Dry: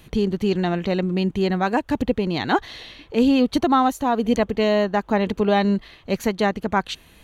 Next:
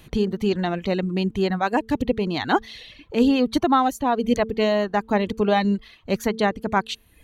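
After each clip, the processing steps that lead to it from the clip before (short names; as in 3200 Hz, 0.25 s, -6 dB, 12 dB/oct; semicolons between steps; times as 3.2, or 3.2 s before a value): reverb removal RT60 0.7 s; de-hum 222.8 Hz, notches 2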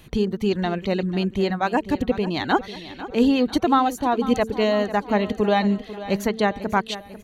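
feedback echo 0.495 s, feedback 50%, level -14.5 dB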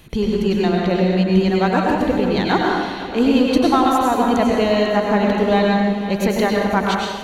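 in parallel at -10.5 dB: soft clip -23 dBFS, distortion -7 dB; on the sum: plate-style reverb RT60 1.3 s, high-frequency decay 0.8×, pre-delay 85 ms, DRR -2 dB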